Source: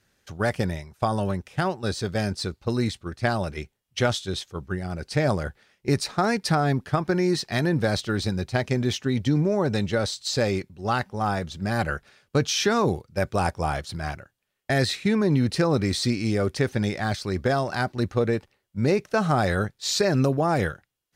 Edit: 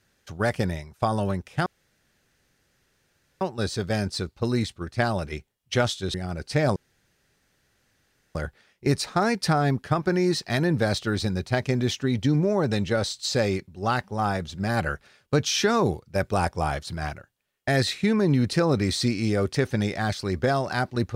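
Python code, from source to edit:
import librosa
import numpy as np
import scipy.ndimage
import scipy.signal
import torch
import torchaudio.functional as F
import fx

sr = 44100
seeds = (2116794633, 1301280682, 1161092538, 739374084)

y = fx.edit(x, sr, fx.insert_room_tone(at_s=1.66, length_s=1.75),
    fx.cut(start_s=4.39, length_s=0.36),
    fx.insert_room_tone(at_s=5.37, length_s=1.59), tone=tone)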